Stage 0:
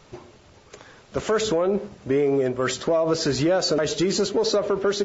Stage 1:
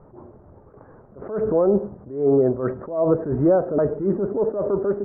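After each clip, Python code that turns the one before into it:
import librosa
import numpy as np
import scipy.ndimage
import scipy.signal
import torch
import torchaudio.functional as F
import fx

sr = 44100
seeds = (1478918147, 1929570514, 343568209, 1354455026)

y = scipy.signal.sosfilt(scipy.signal.bessel(8, 760.0, 'lowpass', norm='mag', fs=sr, output='sos'), x)
y = fx.attack_slew(y, sr, db_per_s=120.0)
y = y * librosa.db_to_amplitude(5.5)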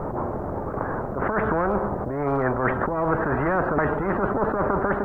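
y = fx.spectral_comp(x, sr, ratio=4.0)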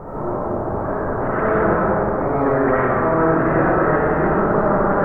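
y = fx.rev_freeverb(x, sr, rt60_s=2.7, hf_ratio=0.55, predelay_ms=35, drr_db=-9.5)
y = y * librosa.db_to_amplitude(-4.5)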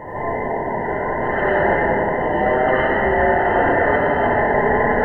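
y = fx.band_invert(x, sr, width_hz=1000)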